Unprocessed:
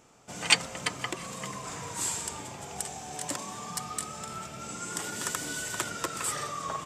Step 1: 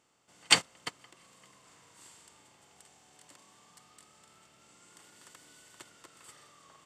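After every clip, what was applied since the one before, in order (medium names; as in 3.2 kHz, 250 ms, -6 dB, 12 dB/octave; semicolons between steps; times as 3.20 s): spectral levelling over time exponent 0.6; band-stop 2.4 kHz, Q 12; gate -22 dBFS, range -28 dB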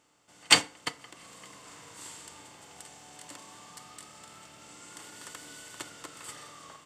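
FDN reverb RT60 0.38 s, low-frequency decay 0.95×, high-frequency decay 0.75×, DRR 11 dB; in parallel at -6.5 dB: hard clipper -16.5 dBFS, distortion -8 dB; on the sum: level rider gain up to 6.5 dB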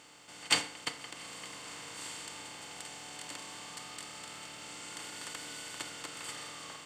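spectral levelling over time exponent 0.6; trim -9 dB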